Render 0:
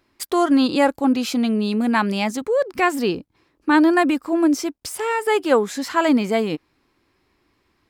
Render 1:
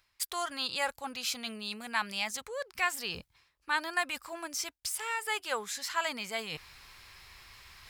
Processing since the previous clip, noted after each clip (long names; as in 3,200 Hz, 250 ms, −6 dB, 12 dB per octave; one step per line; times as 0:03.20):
guitar amp tone stack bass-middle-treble 10-0-10
reversed playback
upward compression, threshold −31 dBFS
reversed playback
level −3 dB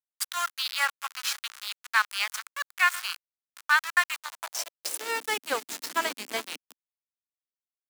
feedback delay that plays each chunk backwards 364 ms, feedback 67%, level −13 dB
centre clipping without the shift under −32 dBFS
high-pass filter sweep 1,300 Hz → 260 Hz, 0:04.09–0:05.26
level +4 dB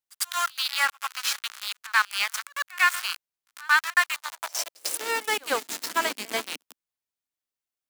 in parallel at −5.5 dB: soft clipping −22.5 dBFS, distortion −8 dB
on the sum: echo ahead of the sound 98 ms −24 dB